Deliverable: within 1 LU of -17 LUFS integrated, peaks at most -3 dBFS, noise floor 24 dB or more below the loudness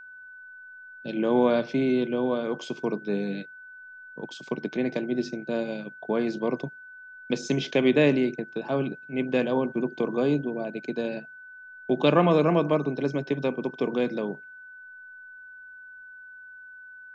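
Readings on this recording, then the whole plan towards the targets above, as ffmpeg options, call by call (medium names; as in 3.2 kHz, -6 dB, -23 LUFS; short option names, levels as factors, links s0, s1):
steady tone 1.5 kHz; tone level -43 dBFS; loudness -26.5 LUFS; peak level -8.0 dBFS; loudness target -17.0 LUFS
-> -af "bandreject=f=1500:w=30"
-af "volume=2.99,alimiter=limit=0.708:level=0:latency=1"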